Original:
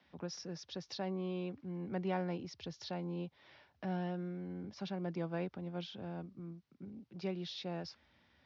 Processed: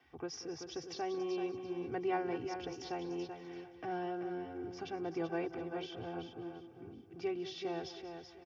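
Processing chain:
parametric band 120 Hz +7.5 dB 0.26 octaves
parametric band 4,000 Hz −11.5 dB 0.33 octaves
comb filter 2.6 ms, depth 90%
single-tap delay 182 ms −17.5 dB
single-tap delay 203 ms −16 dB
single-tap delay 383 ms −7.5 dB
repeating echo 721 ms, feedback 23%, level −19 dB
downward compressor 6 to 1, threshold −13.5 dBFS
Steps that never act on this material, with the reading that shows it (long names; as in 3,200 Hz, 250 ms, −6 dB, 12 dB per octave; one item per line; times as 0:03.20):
downward compressor, threshold −13.5 dBFS: peak of its input −24.0 dBFS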